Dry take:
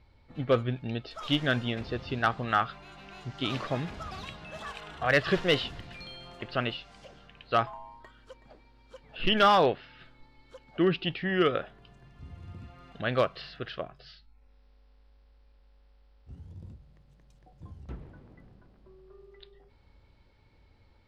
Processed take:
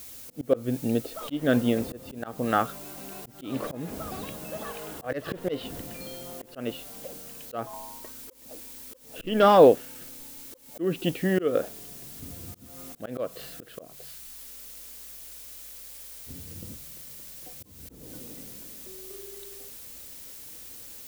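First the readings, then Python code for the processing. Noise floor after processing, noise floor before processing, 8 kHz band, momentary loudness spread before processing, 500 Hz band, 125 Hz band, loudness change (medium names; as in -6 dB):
-49 dBFS, -61 dBFS, no reading, 21 LU, +5.0 dB, -1.5 dB, +1.0 dB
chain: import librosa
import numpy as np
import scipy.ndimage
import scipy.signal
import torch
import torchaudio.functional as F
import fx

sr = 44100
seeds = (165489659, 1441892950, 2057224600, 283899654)

y = fx.small_body(x, sr, hz=(280.0, 470.0), ring_ms=20, db=15)
y = fx.dmg_noise_colour(y, sr, seeds[0], colour='blue', level_db=-41.0)
y = fx.auto_swell(y, sr, attack_ms=261.0)
y = y * 10.0 ** (-3.0 / 20.0)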